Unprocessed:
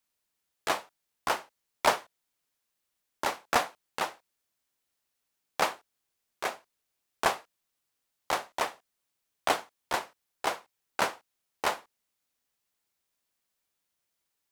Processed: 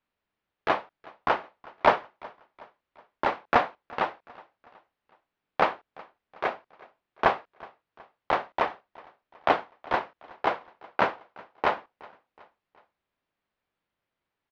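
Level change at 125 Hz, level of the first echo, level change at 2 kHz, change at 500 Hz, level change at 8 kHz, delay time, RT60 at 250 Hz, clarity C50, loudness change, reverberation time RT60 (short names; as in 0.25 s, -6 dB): +6.5 dB, -23.0 dB, +3.0 dB, +5.5 dB, under -20 dB, 0.37 s, none, none, +4.0 dB, none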